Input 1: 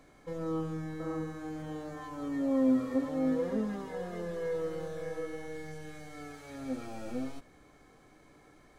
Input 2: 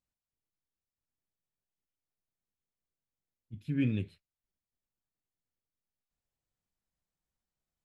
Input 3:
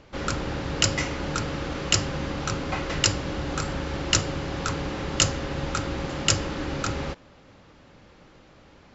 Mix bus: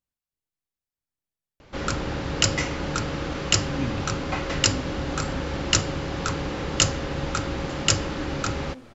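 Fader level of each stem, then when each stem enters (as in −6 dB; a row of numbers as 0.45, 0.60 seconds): −9.5, −0.5, +1.0 decibels; 2.05, 0.00, 1.60 seconds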